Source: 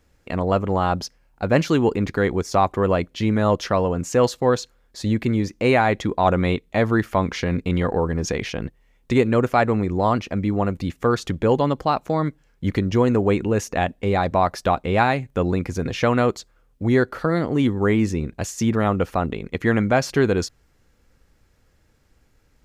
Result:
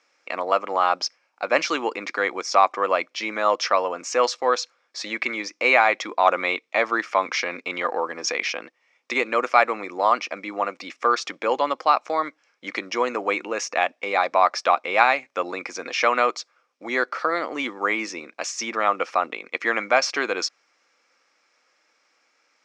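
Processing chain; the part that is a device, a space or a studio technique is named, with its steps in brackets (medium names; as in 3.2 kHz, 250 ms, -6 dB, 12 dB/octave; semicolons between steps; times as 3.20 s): 5.01–5.42 s: peaking EQ 1.9 kHz +5 dB 1.9 oct; phone speaker on a table (cabinet simulation 380–7200 Hz, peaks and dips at 410 Hz -10 dB, 1.2 kHz +7 dB, 2.3 kHz +9 dB, 5.4 kHz +9 dB)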